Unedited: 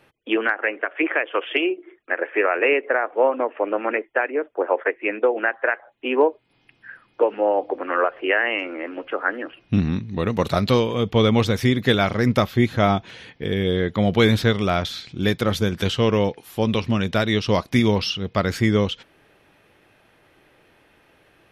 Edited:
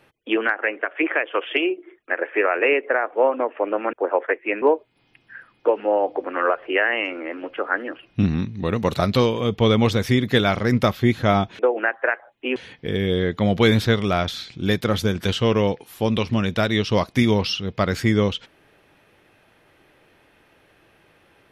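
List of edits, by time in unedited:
3.93–4.50 s: delete
5.19–6.16 s: move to 13.13 s

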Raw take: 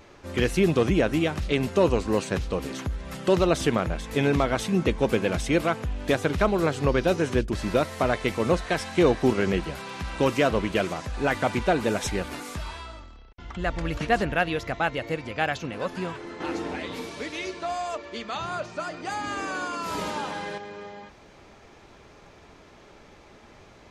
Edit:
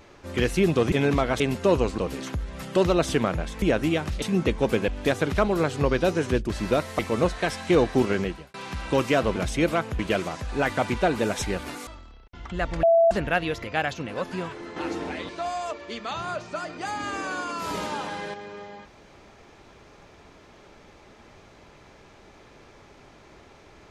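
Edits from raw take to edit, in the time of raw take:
0.92–1.52 s: swap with 4.14–4.62 s
2.10–2.50 s: delete
5.28–5.91 s: move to 10.64 s
8.02–8.27 s: delete
9.40–9.82 s: fade out
12.52–12.92 s: delete
13.88–14.16 s: bleep 667 Hz -14 dBFS
14.69–15.28 s: delete
16.93–17.53 s: delete

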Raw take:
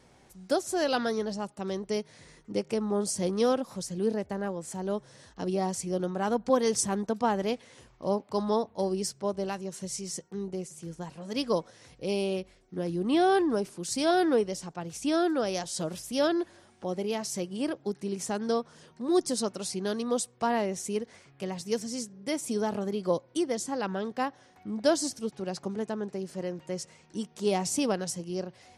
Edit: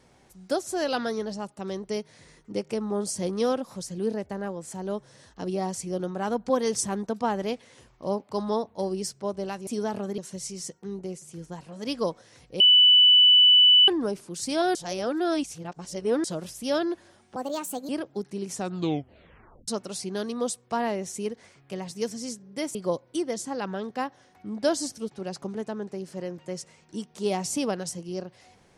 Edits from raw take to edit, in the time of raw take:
12.09–13.37 s: bleep 2.98 kHz -12.5 dBFS
14.24–15.73 s: reverse
16.85–17.59 s: speed 140%
18.24 s: tape stop 1.14 s
22.45–22.96 s: move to 9.67 s

